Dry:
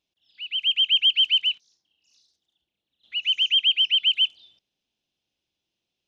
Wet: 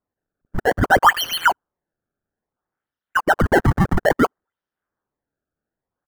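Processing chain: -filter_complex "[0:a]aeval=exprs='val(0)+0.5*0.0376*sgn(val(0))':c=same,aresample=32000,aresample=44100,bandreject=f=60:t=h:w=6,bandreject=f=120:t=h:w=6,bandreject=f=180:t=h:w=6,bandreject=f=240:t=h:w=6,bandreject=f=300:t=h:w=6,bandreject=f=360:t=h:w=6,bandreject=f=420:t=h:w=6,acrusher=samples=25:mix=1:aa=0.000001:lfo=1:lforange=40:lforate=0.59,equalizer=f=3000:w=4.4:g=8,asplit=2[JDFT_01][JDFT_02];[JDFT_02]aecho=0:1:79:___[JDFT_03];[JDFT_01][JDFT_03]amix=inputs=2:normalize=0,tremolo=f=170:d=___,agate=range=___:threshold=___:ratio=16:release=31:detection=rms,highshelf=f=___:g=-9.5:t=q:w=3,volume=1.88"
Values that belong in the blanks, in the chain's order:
0.237, 0.519, 0.00178, 0.0501, 2100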